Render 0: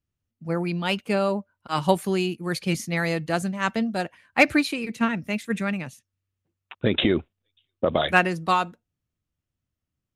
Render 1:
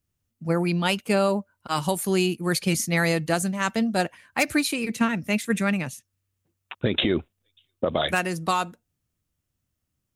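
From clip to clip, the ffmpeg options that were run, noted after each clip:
ffmpeg -i in.wav -filter_complex "[0:a]acrossover=split=6100[link_01][link_02];[link_01]alimiter=limit=-16dB:level=0:latency=1:release=361[link_03];[link_02]acontrast=61[link_04];[link_03][link_04]amix=inputs=2:normalize=0,volume=4dB" out.wav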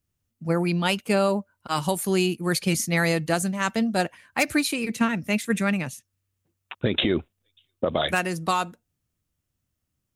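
ffmpeg -i in.wav -af anull out.wav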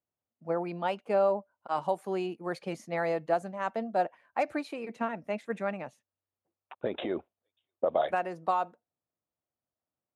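ffmpeg -i in.wav -af "bandpass=frequency=690:width_type=q:width=1.8:csg=0" out.wav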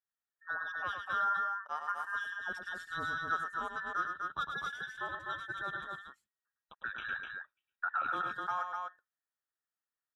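ffmpeg -i in.wav -filter_complex "[0:a]afftfilt=real='real(if(between(b,1,1012),(2*floor((b-1)/92)+1)*92-b,b),0)':imag='imag(if(between(b,1,1012),(2*floor((b-1)/92)+1)*92-b,b),0)*if(between(b,1,1012),-1,1)':win_size=2048:overlap=0.75,asplit=2[link_01][link_02];[link_02]aecho=0:1:105|250.7:0.501|0.631[link_03];[link_01][link_03]amix=inputs=2:normalize=0,volume=-8dB" out.wav

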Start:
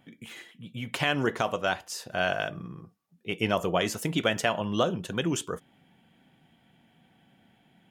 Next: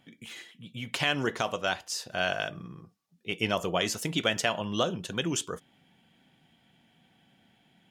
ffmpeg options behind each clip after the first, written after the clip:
ffmpeg -i in.wav -af "equalizer=frequency=5000:width_type=o:width=1.9:gain=7,volume=-3dB" out.wav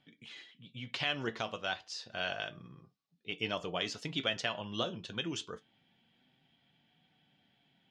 ffmpeg -i in.wav -af "flanger=delay=6.7:depth=2.5:regen=66:speed=0.28:shape=sinusoidal,lowpass=frequency=4300:width_type=q:width=1.6,volume=-4dB" out.wav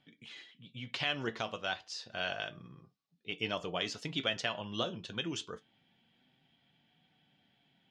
ffmpeg -i in.wav -af anull out.wav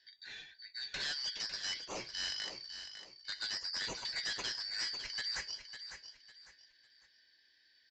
ffmpeg -i in.wav -af "afftfilt=real='real(if(lt(b,272),68*(eq(floor(b/68),0)*3+eq(floor(b/68),1)*2+eq(floor(b/68),2)*1+eq(floor(b/68),3)*0)+mod(b,68),b),0)':imag='imag(if(lt(b,272),68*(eq(floor(b/68),0)*3+eq(floor(b/68),1)*2+eq(floor(b/68),2)*1+eq(floor(b/68),3)*0)+mod(b,68),b),0)':win_size=2048:overlap=0.75,aresample=16000,asoftclip=type=tanh:threshold=-36dB,aresample=44100,aecho=1:1:552|1104|1656:0.335|0.1|0.0301,volume=2dB" out.wav

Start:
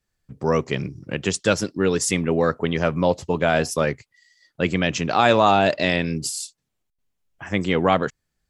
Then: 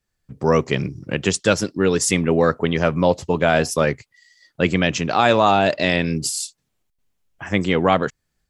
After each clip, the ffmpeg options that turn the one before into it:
ffmpeg -i in.wav -af "dynaudnorm=framelen=210:gausssize=3:maxgain=5dB" out.wav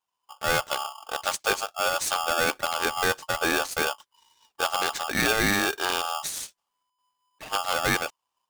ffmpeg -i in.wav -af "aeval=exprs='val(0)*sgn(sin(2*PI*1000*n/s))':channel_layout=same,volume=-8dB" out.wav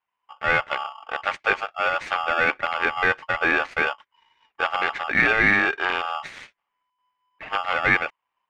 ffmpeg -i in.wav -af "lowpass=frequency=2100:width_type=q:width=3.3" out.wav

